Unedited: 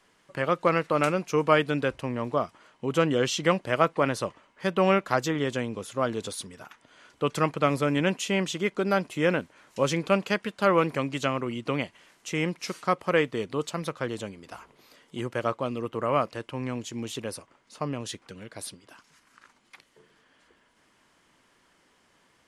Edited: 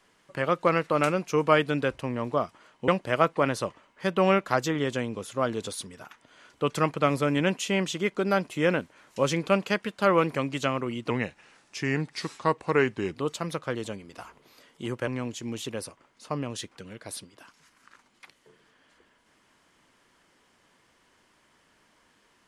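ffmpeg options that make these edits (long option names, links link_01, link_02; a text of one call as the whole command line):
ffmpeg -i in.wav -filter_complex "[0:a]asplit=5[link_01][link_02][link_03][link_04][link_05];[link_01]atrim=end=2.882[link_06];[link_02]atrim=start=3.478:end=11.704[link_07];[link_03]atrim=start=11.7:end=13.48,asetpts=PTS-STARTPTS,asetrate=38367,aresample=44100[link_08];[link_04]atrim=start=13.476:end=15.412[link_09];[link_05]atrim=start=16.578[link_10];[link_06][link_07]acrossfade=duration=0.004:curve1=hsin:curve2=hsin[link_11];[link_11][link_08]acrossfade=duration=0.004:curve1=hsin:curve2=hsin[link_12];[link_12][link_09]acrossfade=duration=0.004:curve1=hsin:curve2=hsin[link_13];[link_13][link_10]acrossfade=duration=0.004:curve1=hsin:curve2=hsin" out.wav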